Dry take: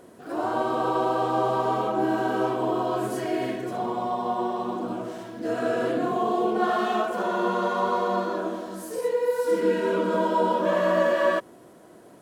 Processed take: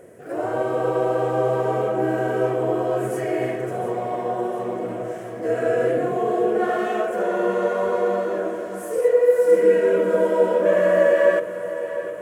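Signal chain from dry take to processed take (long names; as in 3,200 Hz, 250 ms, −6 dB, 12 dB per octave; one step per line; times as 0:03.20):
octave-band graphic EQ 125/250/500/1,000/2,000/4,000/8,000 Hz +8/−7/+11/−9/+9/−12/+4 dB
on a send: feedback echo with a high-pass in the loop 708 ms, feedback 71%, high-pass 200 Hz, level −12.5 dB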